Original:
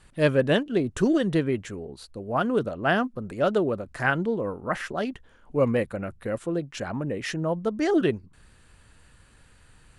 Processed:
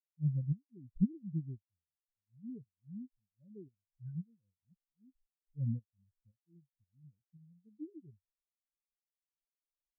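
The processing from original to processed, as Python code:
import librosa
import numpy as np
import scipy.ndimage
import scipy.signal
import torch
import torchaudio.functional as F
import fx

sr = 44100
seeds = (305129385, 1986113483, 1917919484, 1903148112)

y = fx.tremolo_shape(x, sr, shape='saw_up', hz=1.9, depth_pct=55)
y = fx.tone_stack(y, sr, knobs='10-0-1')
y = fx.spectral_expand(y, sr, expansion=4.0)
y = y * 10.0 ** (11.0 / 20.0)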